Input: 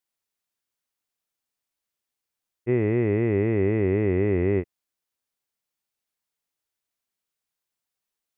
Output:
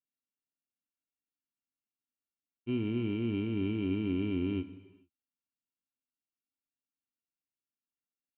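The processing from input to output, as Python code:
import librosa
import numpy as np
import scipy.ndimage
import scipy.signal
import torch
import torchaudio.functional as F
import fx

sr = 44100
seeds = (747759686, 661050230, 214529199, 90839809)

y = np.r_[np.sort(x[:len(x) // 32 * 32].reshape(-1, 32), axis=1).ravel(), x[len(x) // 32 * 32:]]
y = fx.formant_cascade(y, sr, vowel='i')
y = fx.rev_gated(y, sr, seeds[0], gate_ms=470, shape='falling', drr_db=11.5)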